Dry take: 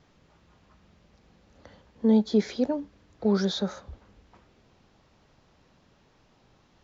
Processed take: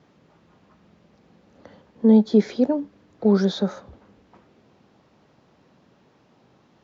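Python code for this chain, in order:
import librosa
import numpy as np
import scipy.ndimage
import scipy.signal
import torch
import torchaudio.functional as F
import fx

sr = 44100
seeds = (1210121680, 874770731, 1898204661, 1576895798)

y = scipy.signal.sosfilt(scipy.signal.butter(2, 180.0, 'highpass', fs=sr, output='sos'), x)
y = fx.tilt_eq(y, sr, slope=-2.0)
y = y * librosa.db_to_amplitude(3.5)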